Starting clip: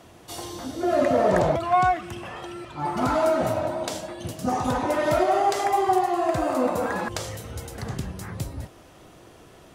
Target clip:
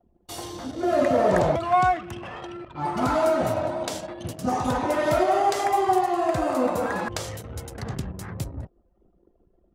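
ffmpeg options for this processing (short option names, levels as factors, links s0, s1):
-af "anlmdn=0.631"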